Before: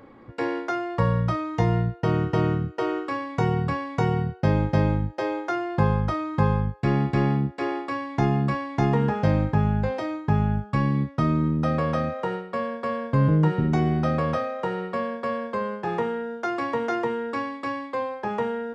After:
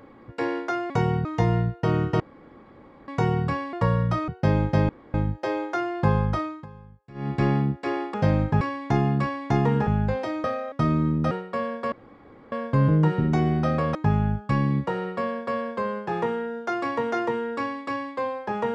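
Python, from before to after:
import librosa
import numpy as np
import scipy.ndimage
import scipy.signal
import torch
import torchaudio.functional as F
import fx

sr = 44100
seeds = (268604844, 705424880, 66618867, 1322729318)

y = fx.edit(x, sr, fx.swap(start_s=0.9, length_s=0.55, other_s=3.93, other_length_s=0.35),
    fx.room_tone_fill(start_s=2.4, length_s=0.88),
    fx.insert_room_tone(at_s=4.89, length_s=0.25),
    fx.fade_down_up(start_s=6.15, length_s=1.0, db=-23.0, fade_s=0.26),
    fx.move(start_s=9.15, length_s=0.47, to_s=7.89),
    fx.swap(start_s=10.19, length_s=0.92, other_s=14.35, other_length_s=0.28),
    fx.cut(start_s=11.7, length_s=0.61),
    fx.insert_room_tone(at_s=12.92, length_s=0.6), tone=tone)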